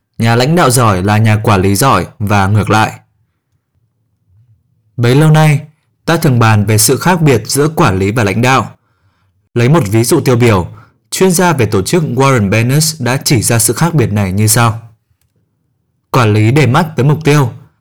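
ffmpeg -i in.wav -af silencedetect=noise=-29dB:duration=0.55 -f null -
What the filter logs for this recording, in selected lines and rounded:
silence_start: 2.97
silence_end: 4.98 | silence_duration: 2.01
silence_start: 8.72
silence_end: 9.56 | silence_duration: 0.84
silence_start: 14.86
silence_end: 16.14 | silence_duration: 1.28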